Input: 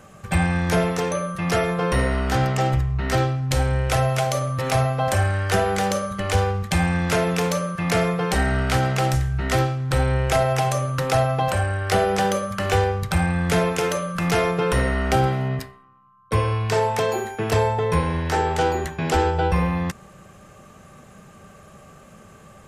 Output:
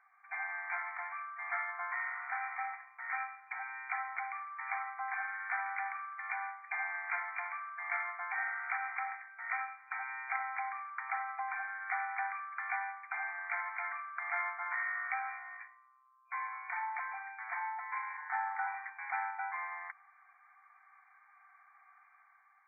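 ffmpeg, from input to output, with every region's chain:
ffmpeg -i in.wav -filter_complex "[0:a]asettb=1/sr,asplit=3[link_01][link_02][link_03];[link_01]atrim=end=14.644[link_04];[link_02]atrim=start=14.64:end=16.53,asetpts=PTS-STARTPTS,afade=type=in:duration=0.004:curve=qsin,afade=type=out:start_time=1.886:duration=0.004:curve=qsin,equalizer=frequency=540:width=0.85:gain=-3.5,asplit=2[link_05][link_06];[link_06]adelay=17,volume=-3.5dB[link_07];[link_05][link_07]amix=inputs=2:normalize=0,atrim=end_sample=83349[link_08];[link_03]atrim=start=16.526[link_09];[link_04][link_08]acrossfade=duration=0.004:curve1=hsin:curve2=qsin[link_10];[link_10][link_09]acrossfade=duration=0.004:curve1=qsin:curve2=hsin,asettb=1/sr,asplit=3[link_11][link_12][link_13];[link_11]atrim=end=18.174[link_14];[link_12]atrim=start=18.17:end=18.67,asetpts=PTS-STARTPTS,afade=type=in:duration=0.004:curve=qsin,afade=type=out:start_time=0.496:duration=0.004:curve=qsin,lowpass=frequency=2000:width=0.5412,lowpass=frequency=2000:width=1.3066,aecho=1:1:6.7:0.42,atrim=end_sample=22050[link_15];[link_13]atrim=start=18.666[link_16];[link_14][link_15]acrossfade=duration=0.004:curve1=hsin:curve2=qsin[link_17];[link_17][link_16]acrossfade=duration=0.004:curve1=qsin:curve2=hsin,aderivative,afftfilt=real='re*between(b*sr/4096,680,2400)':imag='im*between(b*sr/4096,680,2400)':win_size=4096:overlap=0.75,dynaudnorm=framelen=110:gausssize=9:maxgain=4.5dB" out.wav

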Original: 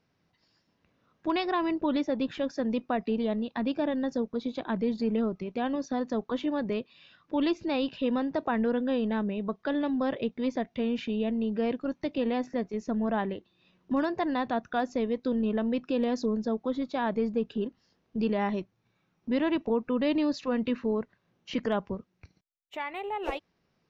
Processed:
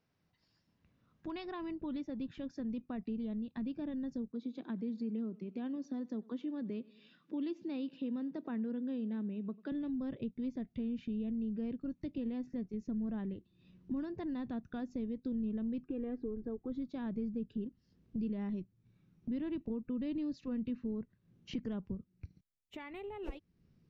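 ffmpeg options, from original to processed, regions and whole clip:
ffmpeg -i in.wav -filter_complex "[0:a]asettb=1/sr,asplit=3[link_01][link_02][link_03];[link_01]atrim=end=4.314[link_04];[link_02]atrim=start=4.31:end=9.72,asetpts=PTS-STARTPTS,afade=type=in:duration=0.004:curve=qsin,afade=type=out:start_time=5.406:duration=0.004:curve=qsin,highpass=frequency=200:width=0.5412,highpass=frequency=200:width=1.3066,aecho=1:1:94|188|282:0.0631|0.0297|0.0139,atrim=end_sample=238581[link_05];[link_03]atrim=start=9.716[link_06];[link_04][link_05]acrossfade=duration=0.004:curve1=hsin:curve2=qsin[link_07];[link_07][link_06]acrossfade=duration=0.004:curve1=qsin:curve2=hsin,asettb=1/sr,asplit=3[link_08][link_09][link_10];[link_08]atrim=end=15.844[link_11];[link_09]atrim=start=15.84:end=16.72,asetpts=PTS-STARTPTS,afade=type=in:duration=0.004:curve=qsin,afade=type=out:start_time=0.876:duration=0.004:curve=qsin,lowpass=frequency=2300:width=0.5412,lowpass=frequency=2300:width=1.3066,aecho=1:1:2.5:0.71,atrim=end_sample=38808[link_12];[link_10]atrim=start=16.716[link_13];[link_11][link_12]acrossfade=duration=0.004:curve1=hsin:curve2=qsin[link_14];[link_14][link_13]acrossfade=duration=0.004:curve1=qsin:curve2=hsin,asubboost=boost=8.5:cutoff=250,acompressor=threshold=-39dB:ratio=2,volume=-7dB" out.wav

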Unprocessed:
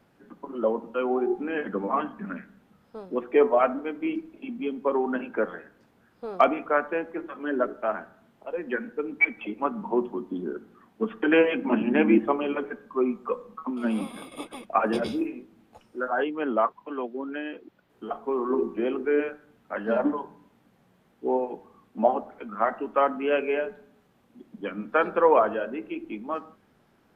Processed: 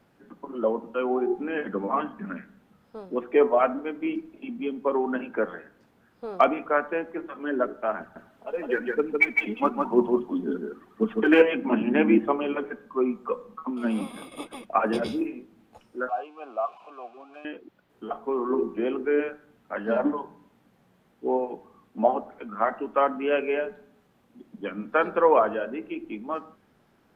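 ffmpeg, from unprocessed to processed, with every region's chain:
ffmpeg -i in.wav -filter_complex "[0:a]asettb=1/sr,asplit=3[link_01][link_02][link_03];[link_01]atrim=end=8.004[link_04];[link_02]atrim=start=8:end=11.42,asetpts=PTS-STARTPTS,afade=type=in:duration=0.004:curve=qsin,afade=type=out:start_time=3.416:duration=0.004:curve=qsin,aphaser=in_gain=1:out_gain=1:delay=4.9:decay=0.51:speed=1:type=triangular,aecho=1:1:157:0.668,atrim=end_sample=150822[link_05];[link_03]atrim=start=11.416[link_06];[link_04][link_05]acrossfade=duration=0.004:curve1=hsin:curve2=qsin[link_07];[link_07][link_06]acrossfade=duration=0.004:curve1=qsin:curve2=hsin,asettb=1/sr,asplit=3[link_08][link_09][link_10];[link_08]atrim=end=16.094[link_11];[link_09]atrim=start=16.09:end=17.45,asetpts=PTS-STARTPTS,afade=type=in:duration=0.004:curve=qsin,afade=type=out:start_time=1.356:duration=0.004:curve=qsin,aeval=exprs='val(0)+0.5*0.0211*sgn(val(0))':channel_layout=same,asplit=3[link_12][link_13][link_14];[link_12]bandpass=frequency=730:width_type=q:width=8,volume=0dB[link_15];[link_13]bandpass=frequency=1090:width_type=q:width=8,volume=-6dB[link_16];[link_14]bandpass=frequency=2440:width_type=q:width=8,volume=-9dB[link_17];[link_15][link_16][link_17]amix=inputs=3:normalize=0[link_18];[link_10]atrim=start=17.446[link_19];[link_11][link_18]acrossfade=duration=0.004:curve1=hsin:curve2=qsin[link_20];[link_20][link_19]acrossfade=duration=0.004:curve1=qsin:curve2=hsin" out.wav

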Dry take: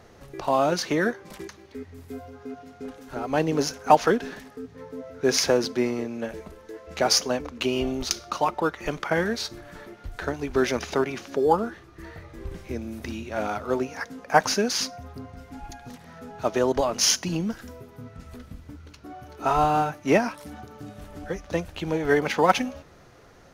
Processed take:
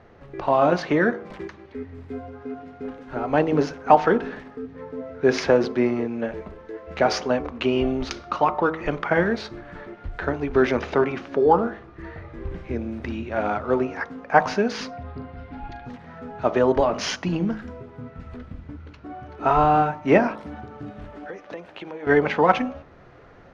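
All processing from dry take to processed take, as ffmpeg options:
ffmpeg -i in.wav -filter_complex "[0:a]asettb=1/sr,asplit=3[link_01][link_02][link_03];[link_01]atrim=end=14.934[link_04];[link_02]atrim=start=14.93:end=15.85,asetpts=PTS-STARTPTS,afade=type=in:duration=0.004:curve=qsin,afade=type=out:start_time=0.916:duration=0.004:curve=qsin,highshelf=frequency=6000:width_type=q:width=1.5:gain=-13,asplit=2[link_05][link_06];[link_06]adelay=40,volume=-12.5dB[link_07];[link_05][link_07]amix=inputs=2:normalize=0,atrim=end_sample=40572[link_08];[link_03]atrim=start=15.846[link_09];[link_04][link_08]acrossfade=duration=0.004:curve1=hsin:curve2=qsin[link_10];[link_10][link_09]acrossfade=duration=0.004:curve1=qsin:curve2=hsin,asettb=1/sr,asplit=3[link_11][link_12][link_13];[link_11]atrim=end=21.104[link_14];[link_12]atrim=start=21.1:end=22.07,asetpts=PTS-STARTPTS,afade=type=in:duration=0.004:curve=qsin,afade=type=out:start_time=0.966:duration=0.004:curve=qsin,highpass=300,acompressor=threshold=-34dB:ratio=10:attack=3.2:release=140:knee=1:detection=peak[link_15];[link_13]atrim=start=22.066[link_16];[link_14][link_15]acrossfade=duration=0.004:curve1=hsin:curve2=qsin[link_17];[link_17][link_16]acrossfade=duration=0.004:curve1=qsin:curve2=hsin,lowpass=2400,bandreject=frequency=53.46:width_type=h:width=4,bandreject=frequency=106.92:width_type=h:width=4,bandreject=frequency=160.38:width_type=h:width=4,bandreject=frequency=213.84:width_type=h:width=4,bandreject=frequency=267.3:width_type=h:width=4,bandreject=frequency=320.76:width_type=h:width=4,bandreject=frequency=374.22:width_type=h:width=4,bandreject=frequency=427.68:width_type=h:width=4,bandreject=frequency=481.14:width_type=h:width=4,bandreject=frequency=534.6:width_type=h:width=4,bandreject=frequency=588.06:width_type=h:width=4,bandreject=frequency=641.52:width_type=h:width=4,bandreject=frequency=694.98:width_type=h:width=4,bandreject=frequency=748.44:width_type=h:width=4,bandreject=frequency=801.9:width_type=h:width=4,bandreject=frequency=855.36:width_type=h:width=4,bandreject=frequency=908.82:width_type=h:width=4,bandreject=frequency=962.28:width_type=h:width=4,bandreject=frequency=1015.74:width_type=h:width=4,bandreject=frequency=1069.2:width_type=h:width=4,bandreject=frequency=1122.66:width_type=h:width=4,bandreject=frequency=1176.12:width_type=h:width=4,bandreject=frequency=1229.58:width_type=h:width=4,bandreject=frequency=1283.04:width_type=h:width=4,bandreject=frequency=1336.5:width_type=h:width=4,bandreject=frequency=1389.96:width_type=h:width=4,dynaudnorm=framelen=210:gausssize=3:maxgain=3.5dB,volume=1dB" out.wav

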